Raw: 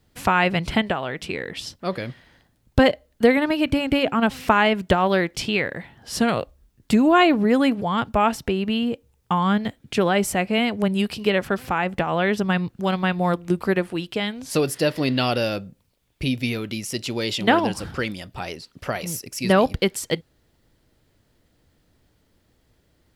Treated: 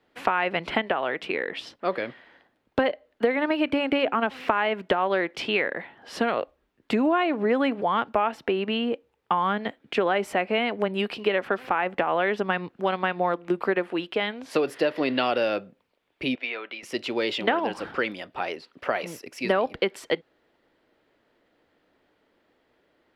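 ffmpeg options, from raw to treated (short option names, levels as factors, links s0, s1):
-filter_complex "[0:a]asettb=1/sr,asplit=3[s0][s1][s2];[s0]atrim=end=16.354[s3];[s1]atrim=start=16.35:end=16.83,asetpts=PTS-STARTPTS,afade=t=in:d=0.004:c=qsin,afade=t=out:st=0.476:d=0.004:c=qsin,highpass=690,lowpass=3000[s4];[s2]atrim=start=16.826[s5];[s3][s4]acrossfade=d=0.004:c1=hsin:c2=qsin[s6];[s6][s5]acrossfade=d=0.004:c1=qsin:c2=hsin,acrossover=split=270 3300:gain=0.0708 1 0.1[s7][s8][s9];[s7][s8][s9]amix=inputs=3:normalize=0,acompressor=threshold=0.0794:ratio=6,volume=1.41"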